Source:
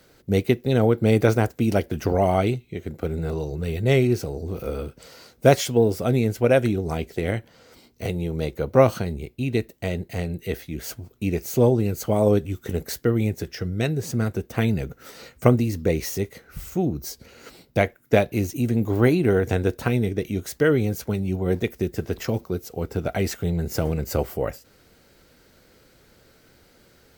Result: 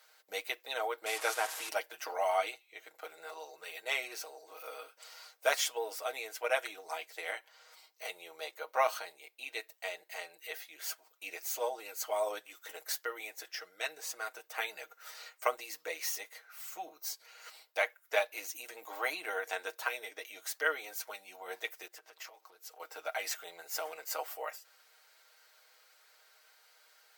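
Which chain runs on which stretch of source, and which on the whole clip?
1.06–1.69 s: one-bit delta coder 64 kbps, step -28 dBFS + treble shelf 9.5 kHz +4.5 dB
21.87–22.80 s: compression 4:1, threshold -37 dBFS + loudspeaker Doppler distortion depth 0.18 ms
whole clip: high-pass 740 Hz 24 dB/octave; comb 6.4 ms, depth 71%; trim -6 dB

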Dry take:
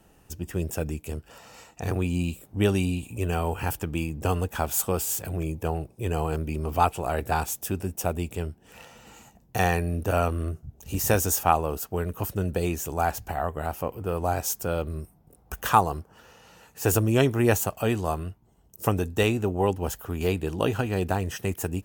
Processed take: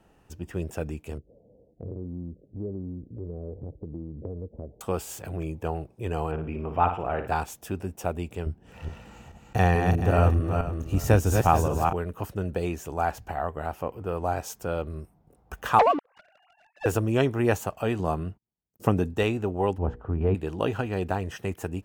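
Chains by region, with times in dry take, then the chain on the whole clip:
1.18–4.81 s: steep low-pass 570 Hz 48 dB/octave + compression 2.5:1, threshold -31 dBFS
6.31–7.28 s: Savitzky-Golay filter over 25 samples + flutter echo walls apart 9.7 m, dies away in 0.42 s
8.46–11.93 s: backward echo that repeats 215 ms, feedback 41%, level -4 dB + bass shelf 230 Hz +10.5 dB
15.79–16.86 s: formants replaced by sine waves + waveshaping leveller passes 3
17.99–19.14 s: peaking EQ 190 Hz +7 dB 1.9 oct + gate -49 dBFS, range -33 dB
19.78–20.35 s: low-pass 1.3 kHz + bass shelf 230 Hz +9.5 dB + hum notches 60/120/180/240/300/360/420/480 Hz
whole clip: low-pass 2.4 kHz 6 dB/octave; bass shelf 340 Hz -3.5 dB

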